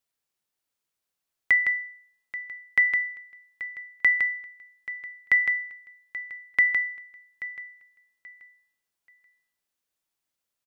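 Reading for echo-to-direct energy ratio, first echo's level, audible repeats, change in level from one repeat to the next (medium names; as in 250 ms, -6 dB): -14.5 dB, -15.0 dB, 2, -12.0 dB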